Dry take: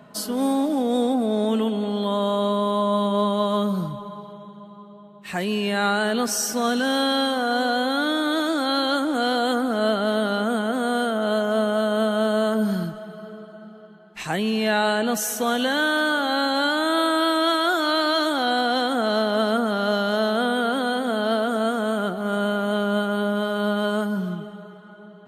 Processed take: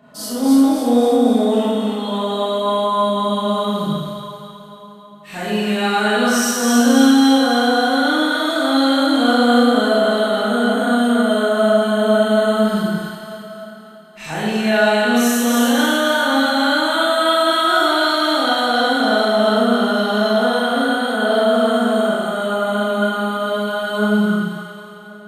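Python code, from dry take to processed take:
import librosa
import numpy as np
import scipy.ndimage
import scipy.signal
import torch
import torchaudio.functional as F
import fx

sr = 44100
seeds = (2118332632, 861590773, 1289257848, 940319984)

y = fx.echo_split(x, sr, split_hz=1100.0, low_ms=96, high_ms=274, feedback_pct=52, wet_db=-3)
y = fx.rev_schroeder(y, sr, rt60_s=1.0, comb_ms=26, drr_db=-8.0)
y = y * 10.0 ** (-5.5 / 20.0)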